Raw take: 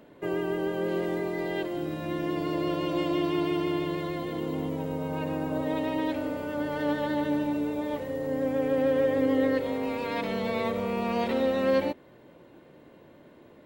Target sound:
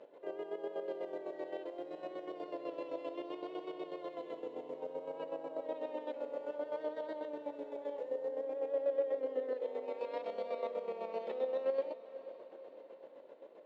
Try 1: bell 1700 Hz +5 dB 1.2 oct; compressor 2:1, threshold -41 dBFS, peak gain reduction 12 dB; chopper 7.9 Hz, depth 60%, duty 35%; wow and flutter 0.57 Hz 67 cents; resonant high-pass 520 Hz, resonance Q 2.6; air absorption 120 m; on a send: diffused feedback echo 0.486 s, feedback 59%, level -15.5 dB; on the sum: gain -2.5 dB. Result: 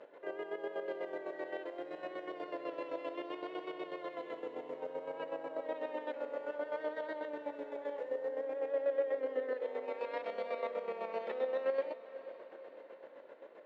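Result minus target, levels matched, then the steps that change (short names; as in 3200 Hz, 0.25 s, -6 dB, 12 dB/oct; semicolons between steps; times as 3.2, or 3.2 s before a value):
2000 Hz band +8.0 dB
change: bell 1700 Hz -5.5 dB 1.2 oct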